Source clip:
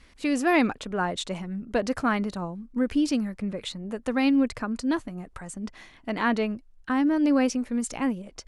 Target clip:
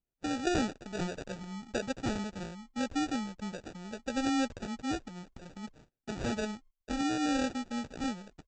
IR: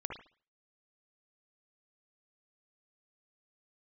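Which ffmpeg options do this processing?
-af "agate=range=-28dB:threshold=-45dB:ratio=16:detection=peak,aresample=16000,acrusher=samples=15:mix=1:aa=0.000001,aresample=44100,volume=-8.5dB"

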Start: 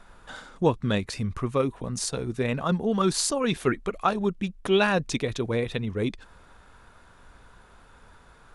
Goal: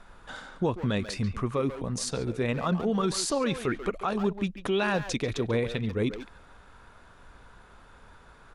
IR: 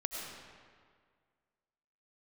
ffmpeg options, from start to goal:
-filter_complex "[0:a]highshelf=frequency=10000:gain=-7.5,alimiter=limit=-18dB:level=0:latency=1:release=58,asplit=2[link_01][link_02];[link_02]adelay=140,highpass=300,lowpass=3400,asoftclip=type=hard:threshold=-27.5dB,volume=-8dB[link_03];[link_01][link_03]amix=inputs=2:normalize=0"

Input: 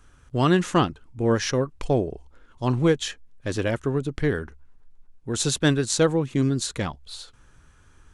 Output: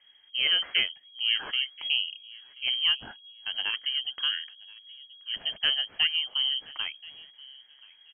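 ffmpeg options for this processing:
ffmpeg -i in.wav -filter_complex "[0:a]asplit=2[link_01][link_02];[link_02]adelay=1029,lowpass=frequency=1200:poles=1,volume=-21dB,asplit=2[link_03][link_04];[link_04]adelay=1029,lowpass=frequency=1200:poles=1,volume=0.24[link_05];[link_03][link_05]amix=inputs=2:normalize=0[link_06];[link_01][link_06]amix=inputs=2:normalize=0,lowpass=frequency=2800:width_type=q:width=0.5098,lowpass=frequency=2800:width_type=q:width=0.6013,lowpass=frequency=2800:width_type=q:width=0.9,lowpass=frequency=2800:width_type=q:width=2.563,afreqshift=-3300,volume=-6dB" out.wav

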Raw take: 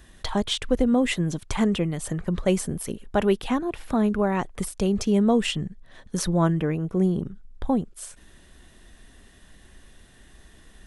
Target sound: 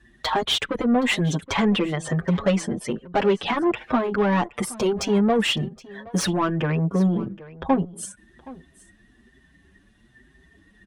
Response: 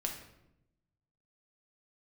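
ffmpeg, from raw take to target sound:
-filter_complex "[0:a]asettb=1/sr,asplit=3[link_01][link_02][link_03];[link_01]atrim=end=1.484[link_04];[link_02]atrim=start=1.48:end=3.97,asetpts=PTS-STARTPTS,afade=type=in:duration=0.004:curve=qsin,afade=type=out:start_time=2.486:duration=0.004:curve=qsin,lowpass=6400[link_05];[link_03]atrim=start=3.966[link_06];[link_04][link_05]acrossfade=duration=0.004:curve1=hsin:curve2=qsin[link_07];[link_07][link_06]acrossfade=duration=0.004:curve1=qsin:curve2=hsin,afftdn=noise_reduction=20:noise_floor=-47,highpass=47,adynamicequalizer=threshold=0.0224:dfrequency=170:dqfactor=1.4:tfrequency=170:tqfactor=1.4:attack=5:release=100:ratio=0.375:range=2:mode=boostabove:tftype=bell,acompressor=threshold=-21dB:ratio=2.5,asplit=2[link_08][link_09];[link_09]highpass=frequency=720:poles=1,volume=19dB,asoftclip=type=tanh:threshold=-11dB[link_10];[link_08][link_10]amix=inputs=2:normalize=0,lowpass=frequency=3200:poles=1,volume=-6dB,aecho=1:1:771:0.106,asplit=2[link_11][link_12];[link_12]adelay=6.4,afreqshift=1.1[link_13];[link_11][link_13]amix=inputs=2:normalize=1,volume=3dB"

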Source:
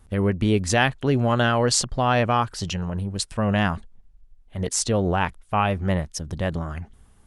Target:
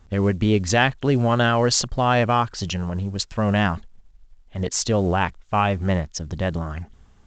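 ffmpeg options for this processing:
ffmpeg -i in.wav -af "volume=1.5dB" -ar 16000 -c:a pcm_mulaw out.wav

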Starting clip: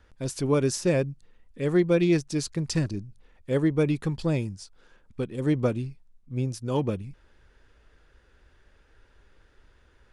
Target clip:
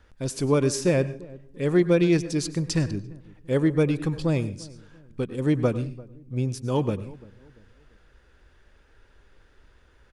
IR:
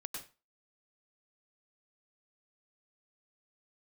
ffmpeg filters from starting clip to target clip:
-filter_complex "[0:a]asplit=2[link_01][link_02];[link_02]adelay=343,lowpass=frequency=880:poles=1,volume=-20.5dB,asplit=2[link_03][link_04];[link_04]adelay=343,lowpass=frequency=880:poles=1,volume=0.39,asplit=2[link_05][link_06];[link_06]adelay=343,lowpass=frequency=880:poles=1,volume=0.39[link_07];[link_01][link_03][link_05][link_07]amix=inputs=4:normalize=0,asplit=2[link_08][link_09];[1:a]atrim=start_sample=2205[link_10];[link_09][link_10]afir=irnorm=-1:irlink=0,volume=-8.5dB[link_11];[link_08][link_11]amix=inputs=2:normalize=0"

